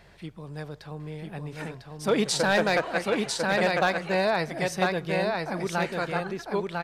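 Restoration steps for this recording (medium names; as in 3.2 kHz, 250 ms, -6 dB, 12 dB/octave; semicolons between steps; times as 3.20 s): clip repair -14 dBFS; de-hum 46.2 Hz, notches 4; inverse comb 999 ms -3.5 dB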